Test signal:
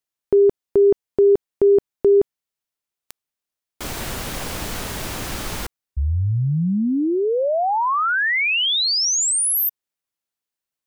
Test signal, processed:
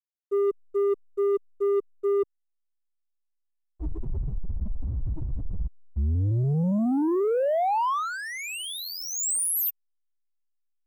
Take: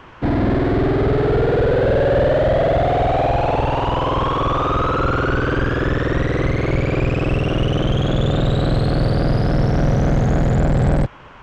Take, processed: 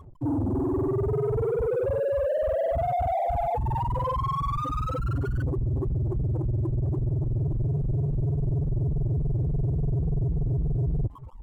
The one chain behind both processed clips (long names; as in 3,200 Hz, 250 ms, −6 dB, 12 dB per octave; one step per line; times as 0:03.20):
spectral peaks only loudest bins 2
reversed playback
downward compressor 4 to 1, threshold −33 dBFS
reversed playback
leveller curve on the samples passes 2
slack as between gear wheels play −41.5 dBFS
flat-topped bell 2,900 Hz −11.5 dB 2.3 octaves
level +5 dB